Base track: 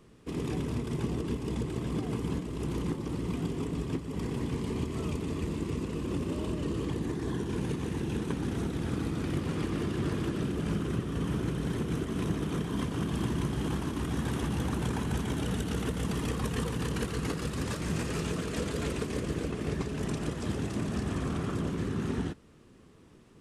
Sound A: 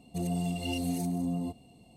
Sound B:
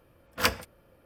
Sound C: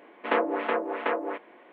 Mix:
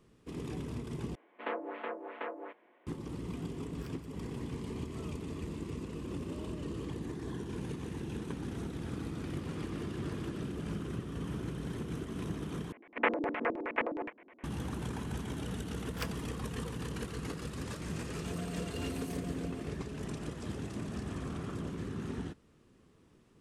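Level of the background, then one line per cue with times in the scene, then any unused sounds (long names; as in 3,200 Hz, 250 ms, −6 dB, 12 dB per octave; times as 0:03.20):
base track −7 dB
0:01.15: overwrite with C −12.5 dB
0:03.41: mix in B −9.5 dB + downward compressor 2.5 to 1, threshold −54 dBFS
0:12.72: overwrite with C −5.5 dB + auto-filter low-pass square 9.6 Hz 260–2,300 Hz
0:15.57: mix in B −16 dB
0:18.11: mix in A −9.5 dB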